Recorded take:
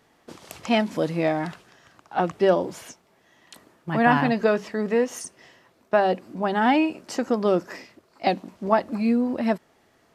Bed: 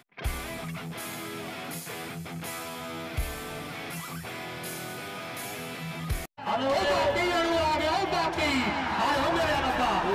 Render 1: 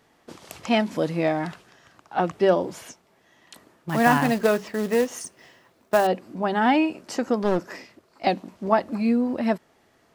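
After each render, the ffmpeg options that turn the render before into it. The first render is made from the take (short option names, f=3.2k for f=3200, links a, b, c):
-filter_complex "[0:a]asettb=1/sr,asplit=3[a][b][c];[a]atrim=end=3.894[d];[b]atrim=start=3.89:end=6.07,asetpts=PTS-STARTPTS,afade=t=in:d=0.004:c=qsin,afade=t=out:st=2.176:d=0.004:c=qsin,acrusher=bits=4:mode=log:mix=0:aa=0.000001[e];[c]atrim=start=6.066[f];[d][e]acrossfade=d=0.004:c1=hsin:c2=qsin[g];[g][f]acrossfade=d=0.004:c1=qsin:c2=hsin,asettb=1/sr,asplit=3[h][i][j];[h]atrim=end=7.414[k];[i]atrim=start=7.41:end=8.25,asetpts=PTS-STARTPTS,afade=t=in:d=0.004:c=qsin,afade=t=out:st=0.836:d=0.004:c=qsin,aeval=exprs='clip(val(0),-1,0.0422)':c=same[l];[j]atrim=start=8.246[m];[k][l]acrossfade=d=0.004:c1=hsin:c2=qsin[n];[n][m]acrossfade=d=0.004:c1=qsin:c2=hsin"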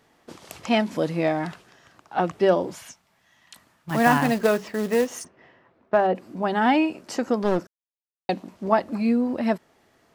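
-filter_complex "[0:a]asettb=1/sr,asplit=3[a][b][c];[a]atrim=end=2.754[d];[b]atrim=start=2.75:end=3.91,asetpts=PTS-STARTPTS,afade=t=in:d=0.004:c=qsin,afade=t=out:st=1.156:d=0.004:c=qsin,equalizer=f=390:w=0.99:g=-13.5[e];[c]atrim=start=3.906[f];[d][e]acrossfade=d=0.004:c1=hsin:c2=qsin[g];[g][f]acrossfade=d=0.004:c1=qsin:c2=hsin,asplit=3[h][i][j];[h]afade=t=out:st=5.23:d=0.02[k];[i]lowpass=2k,afade=t=in:st=5.23:d=0.02,afade=t=out:st=6.14:d=0.02[l];[j]afade=t=in:st=6.14:d=0.02[m];[k][l][m]amix=inputs=3:normalize=0,asplit=3[n][o][p];[n]atrim=end=7.67,asetpts=PTS-STARTPTS,afade=t=out:st=7.666:d=0.004:c=hsin[q];[o]atrim=start=7.67:end=8.29,asetpts=PTS-STARTPTS,volume=0[r];[p]atrim=start=8.29,asetpts=PTS-STARTPTS,afade=t=in:d=0.004:c=hsin[s];[q][r][s]concat=n=3:v=0:a=1"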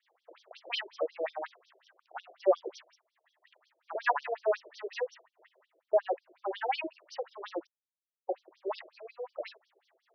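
-filter_complex "[0:a]acrossover=split=590[a][b];[a]aeval=exprs='val(0)*(1-0.7/2+0.7/2*cos(2*PI*4.5*n/s))':c=same[c];[b]aeval=exprs='val(0)*(1-0.7/2-0.7/2*cos(2*PI*4.5*n/s))':c=same[d];[c][d]amix=inputs=2:normalize=0,afftfilt=real='re*between(b*sr/1024,460*pow(4500/460,0.5+0.5*sin(2*PI*5.5*pts/sr))/1.41,460*pow(4500/460,0.5+0.5*sin(2*PI*5.5*pts/sr))*1.41)':imag='im*between(b*sr/1024,460*pow(4500/460,0.5+0.5*sin(2*PI*5.5*pts/sr))/1.41,460*pow(4500/460,0.5+0.5*sin(2*PI*5.5*pts/sr))*1.41)':win_size=1024:overlap=0.75"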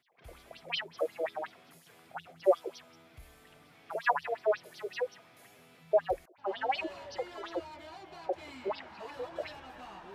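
-filter_complex "[1:a]volume=-22dB[a];[0:a][a]amix=inputs=2:normalize=0"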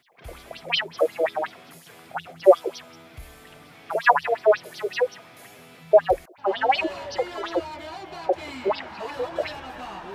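-af "volume=11dB"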